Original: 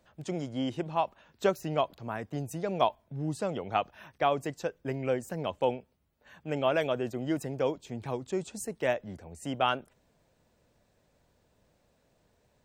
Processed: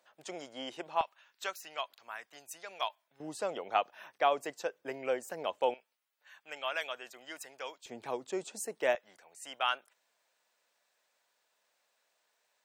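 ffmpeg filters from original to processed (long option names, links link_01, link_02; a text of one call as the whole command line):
ffmpeg -i in.wav -af "asetnsamples=nb_out_samples=441:pad=0,asendcmd='1.01 highpass f 1400;3.2 highpass f 490;5.74 highpass f 1300;7.86 highpass f 410;8.95 highpass f 1100',highpass=630" out.wav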